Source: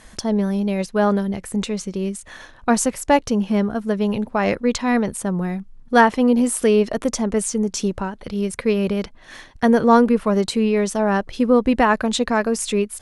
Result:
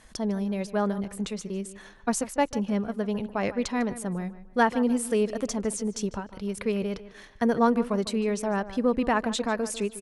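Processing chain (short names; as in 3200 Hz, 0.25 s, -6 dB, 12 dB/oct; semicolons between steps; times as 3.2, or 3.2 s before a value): tempo 1.3×; tape echo 0.15 s, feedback 33%, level -14 dB, low-pass 3300 Hz; gain -8 dB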